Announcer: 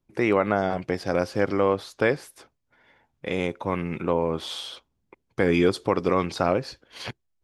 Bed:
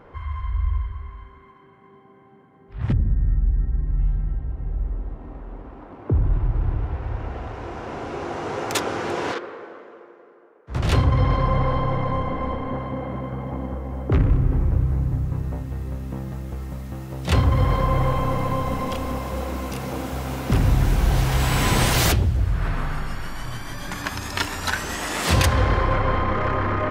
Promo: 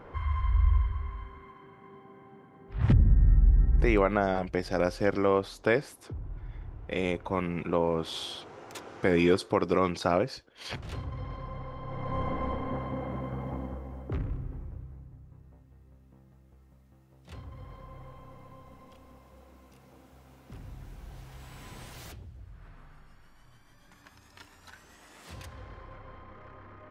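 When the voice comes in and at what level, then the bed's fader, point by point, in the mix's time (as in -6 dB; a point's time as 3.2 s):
3.65 s, -3.0 dB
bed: 3.86 s -0.5 dB
4.09 s -19.5 dB
11.77 s -19.5 dB
12.23 s -6 dB
13.5 s -6 dB
15.15 s -27 dB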